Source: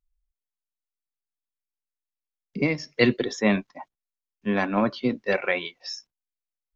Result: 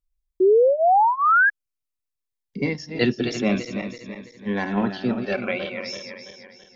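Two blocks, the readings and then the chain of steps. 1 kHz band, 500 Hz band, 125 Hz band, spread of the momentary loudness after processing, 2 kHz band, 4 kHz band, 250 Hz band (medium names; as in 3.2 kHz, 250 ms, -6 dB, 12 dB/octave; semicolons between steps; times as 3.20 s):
+13.5 dB, +7.0 dB, +1.5 dB, 18 LU, +6.0 dB, +0.5 dB, +1.5 dB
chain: backward echo that repeats 166 ms, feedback 66%, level -7 dB; painted sound rise, 0.40–1.50 s, 360–1700 Hz -14 dBFS; Shepard-style phaser falling 0.51 Hz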